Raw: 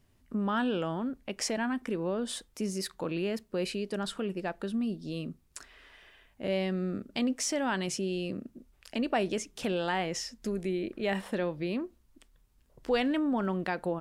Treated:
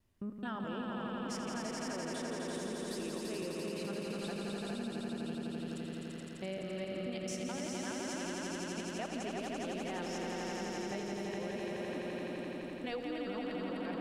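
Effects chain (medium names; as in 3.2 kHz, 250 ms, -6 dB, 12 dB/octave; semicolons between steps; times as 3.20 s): time reversed locally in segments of 214 ms; echo with a slow build-up 85 ms, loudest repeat 5, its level -4 dB; compression, threshold -27 dBFS, peak gain reduction 7.5 dB; trim -8.5 dB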